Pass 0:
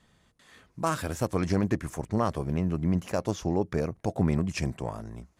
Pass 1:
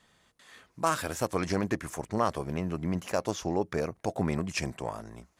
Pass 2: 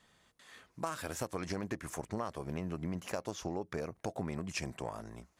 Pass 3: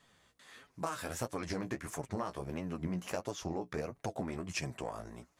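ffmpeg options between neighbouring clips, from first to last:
-af "lowshelf=f=300:g=-10.5,volume=2.5dB"
-af "acompressor=threshold=-31dB:ratio=6,volume=-2.5dB"
-af "flanger=delay=6.9:depth=9.7:regen=25:speed=1.5:shape=sinusoidal,volume=4dB"

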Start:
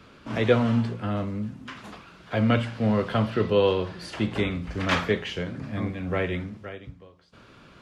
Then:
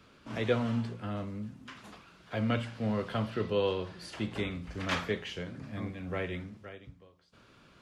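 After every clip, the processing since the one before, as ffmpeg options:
-af "highshelf=f=4.6k:g=5.5,volume=-8.5dB"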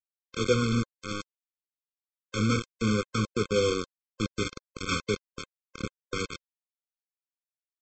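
-af "aresample=16000,acrusher=bits=4:mix=0:aa=0.000001,aresample=44100,afftfilt=real='re*eq(mod(floor(b*sr/1024/520),2),0)':imag='im*eq(mod(floor(b*sr/1024/520),2),0)':win_size=1024:overlap=0.75,volume=4dB"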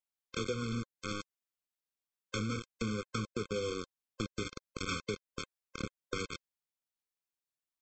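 -af "acompressor=threshold=-33dB:ratio=6"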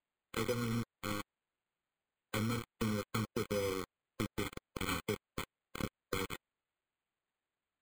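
-af "acrusher=samples=8:mix=1:aa=0.000001"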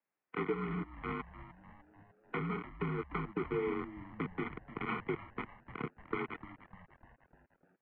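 -filter_complex "[0:a]highpass=f=210:t=q:w=0.5412,highpass=f=210:t=q:w=1.307,lowpass=f=2.5k:t=q:w=0.5176,lowpass=f=2.5k:t=q:w=0.7071,lowpass=f=2.5k:t=q:w=1.932,afreqshift=-56,asplit=7[a][b][c][d][e][f][g];[b]adelay=300,afreqshift=-120,volume=-14dB[h];[c]adelay=600,afreqshift=-240,volume=-18.9dB[i];[d]adelay=900,afreqshift=-360,volume=-23.8dB[j];[e]adelay=1200,afreqshift=-480,volume=-28.6dB[k];[f]adelay=1500,afreqshift=-600,volume=-33.5dB[l];[g]adelay=1800,afreqshift=-720,volume=-38.4dB[m];[a][h][i][j][k][l][m]amix=inputs=7:normalize=0,volume=2dB"

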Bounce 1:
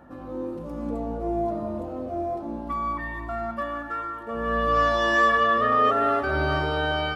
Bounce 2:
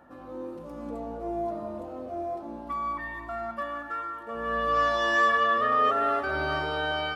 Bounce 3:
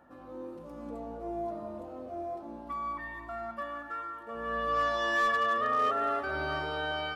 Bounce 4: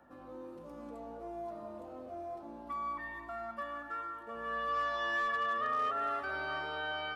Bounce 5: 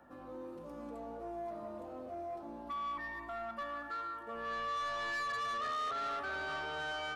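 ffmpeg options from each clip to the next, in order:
-af "lowshelf=f=310:g=-9,volume=-2dB"
-af "asoftclip=type=hard:threshold=-17dB,volume=-4.5dB"
-filter_complex "[0:a]acrossover=split=200|780|3700[a][b][c][d];[a]acompressor=threshold=-57dB:ratio=4[e];[b]acompressor=threshold=-44dB:ratio=4[f];[c]acompressor=threshold=-29dB:ratio=4[g];[d]acompressor=threshold=-59dB:ratio=4[h];[e][f][g][h]amix=inputs=4:normalize=0,volume=-2dB"
-af "asoftclip=type=tanh:threshold=-35.5dB,volume=1.5dB"

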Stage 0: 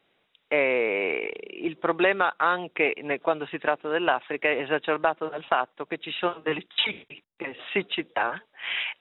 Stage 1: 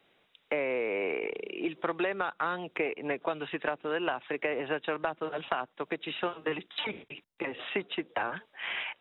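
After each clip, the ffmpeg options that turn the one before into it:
-filter_complex "[0:a]acrossover=split=280|1600[a][b][c];[a]acompressor=threshold=-44dB:ratio=4[d];[b]acompressor=threshold=-33dB:ratio=4[e];[c]acompressor=threshold=-41dB:ratio=4[f];[d][e][f]amix=inputs=3:normalize=0,volume=1.5dB"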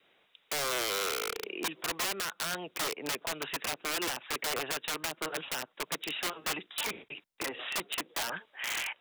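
-af "adynamicequalizer=threshold=0.00355:dfrequency=770:dqfactor=3.7:tfrequency=770:tqfactor=3.7:attack=5:release=100:ratio=0.375:range=2:mode=cutabove:tftype=bell,aeval=exprs='(mod(23.7*val(0)+1,2)-1)/23.7':c=same,lowshelf=f=320:g=-8,volume=1.5dB"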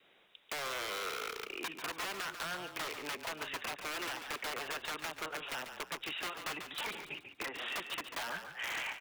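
-filter_complex "[0:a]acrossover=split=850|2100|4200[a][b][c][d];[a]acompressor=threshold=-48dB:ratio=4[e];[b]acompressor=threshold=-41dB:ratio=4[f];[c]acompressor=threshold=-46dB:ratio=4[g];[d]acompressor=threshold=-49dB:ratio=4[h];[e][f][g][h]amix=inputs=4:normalize=0,asoftclip=type=hard:threshold=-33.5dB,asplit=5[i][j][k][l][m];[j]adelay=142,afreqshift=-34,volume=-8.5dB[n];[k]adelay=284,afreqshift=-68,volume=-17.1dB[o];[l]adelay=426,afreqshift=-102,volume=-25.8dB[p];[m]adelay=568,afreqshift=-136,volume=-34.4dB[q];[i][n][o][p][q]amix=inputs=5:normalize=0,volume=1dB"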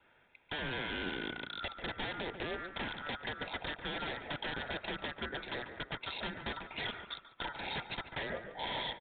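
-filter_complex "[0:a]afftfilt=real='real(if(lt(b,960),b+48*(1-2*mod(floor(b/48),2)),b),0)':imag='imag(if(lt(b,960),b+48*(1-2*mod(floor(b/48),2)),b),0)':win_size=2048:overlap=0.75,acrossover=split=2900[a][b];[b]acrusher=bits=6:mix=0:aa=0.000001[c];[a][c]amix=inputs=2:normalize=0,aresample=8000,aresample=44100,volume=1.5dB"

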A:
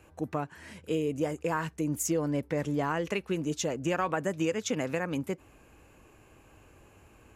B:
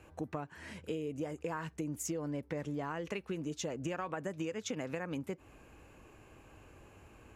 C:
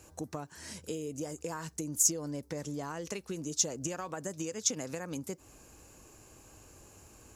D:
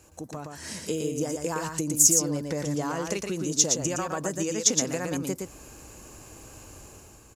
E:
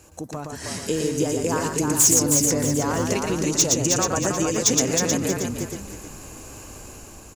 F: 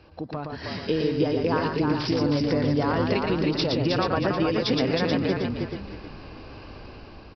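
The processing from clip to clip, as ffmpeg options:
-af "highshelf=f=8.1k:g=-7,acompressor=threshold=-36dB:ratio=4"
-af "highshelf=f=3.8k:t=q:w=1.5:g=13"
-filter_complex "[0:a]dynaudnorm=f=120:g=9:m=8dB,asplit=2[a][b];[b]aecho=0:1:116:0.596[c];[a][c]amix=inputs=2:normalize=0"
-filter_complex "[0:a]asoftclip=type=hard:threshold=-17dB,asplit=5[a][b][c][d][e];[b]adelay=315,afreqshift=-38,volume=-4dB[f];[c]adelay=630,afreqshift=-76,volume=-13.9dB[g];[d]adelay=945,afreqshift=-114,volume=-23.8dB[h];[e]adelay=1260,afreqshift=-152,volume=-33.7dB[i];[a][f][g][h][i]amix=inputs=5:normalize=0,volume=5dB"
-af "aresample=11025,aresample=44100"

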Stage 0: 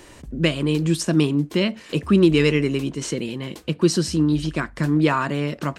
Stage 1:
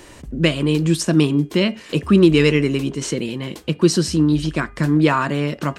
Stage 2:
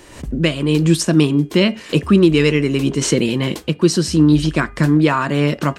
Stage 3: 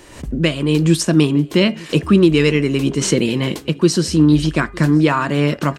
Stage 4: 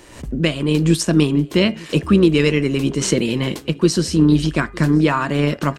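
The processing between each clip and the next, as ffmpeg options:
-af "bandreject=f=406.2:t=h:w=4,bandreject=f=812.4:t=h:w=4,bandreject=f=1.2186k:t=h:w=4,bandreject=f=1.6248k:t=h:w=4,bandreject=f=2.031k:t=h:w=4,bandreject=f=2.4372k:t=h:w=4,bandreject=f=2.8434k:t=h:w=4,bandreject=f=3.2496k:t=h:w=4,volume=3dB"
-af "dynaudnorm=f=110:g=3:m=10.5dB,volume=-1dB"
-af "aecho=1:1:909:0.0668"
-af "tremolo=f=120:d=0.333"

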